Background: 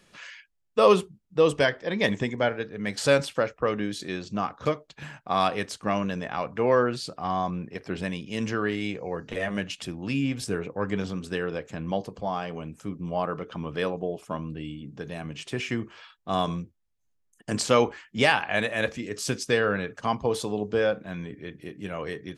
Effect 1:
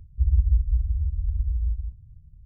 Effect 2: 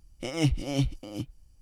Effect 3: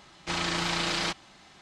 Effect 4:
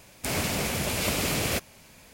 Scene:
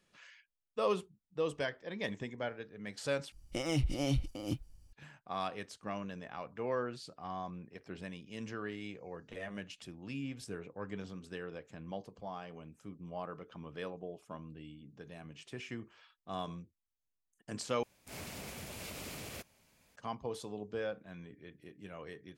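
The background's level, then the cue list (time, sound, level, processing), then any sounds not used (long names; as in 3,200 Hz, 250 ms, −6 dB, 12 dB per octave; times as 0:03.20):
background −14 dB
0:03.32: overwrite with 2 −1.5 dB + brickwall limiter −21 dBFS
0:17.83: overwrite with 4 −16.5 dB + brickwall limiter −18.5 dBFS
not used: 1, 3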